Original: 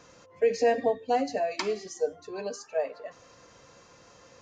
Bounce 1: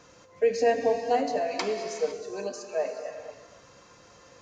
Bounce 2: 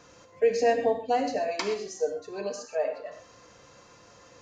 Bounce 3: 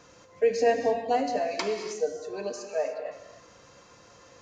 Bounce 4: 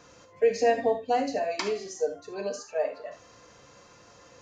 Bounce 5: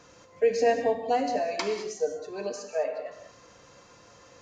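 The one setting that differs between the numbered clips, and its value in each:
gated-style reverb, gate: 530 ms, 150 ms, 330 ms, 100 ms, 230 ms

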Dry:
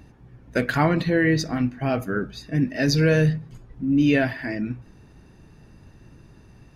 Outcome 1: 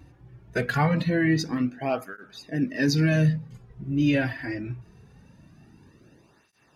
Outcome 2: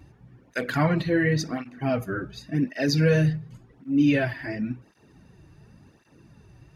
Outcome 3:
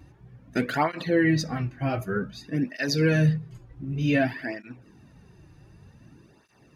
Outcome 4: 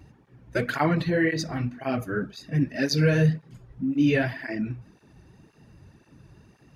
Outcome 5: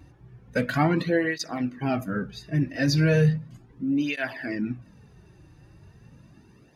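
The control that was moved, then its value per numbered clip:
cancelling through-zero flanger, nulls at: 0.23 Hz, 0.91 Hz, 0.54 Hz, 1.9 Hz, 0.36 Hz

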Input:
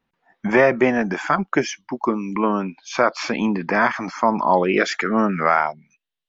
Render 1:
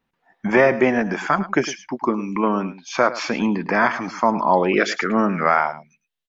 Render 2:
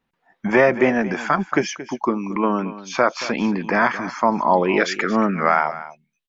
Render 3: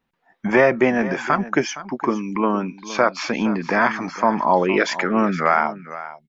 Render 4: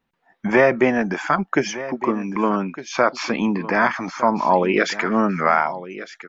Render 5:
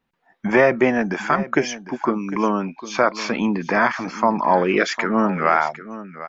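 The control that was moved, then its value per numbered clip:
delay, time: 106 ms, 226 ms, 465 ms, 1208 ms, 753 ms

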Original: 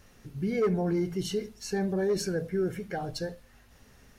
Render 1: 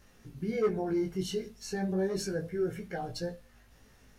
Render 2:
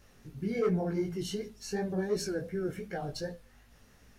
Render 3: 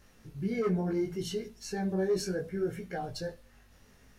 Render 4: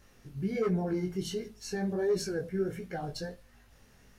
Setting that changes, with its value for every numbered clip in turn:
chorus, rate: 0.31 Hz, 2.7 Hz, 0.68 Hz, 1.4 Hz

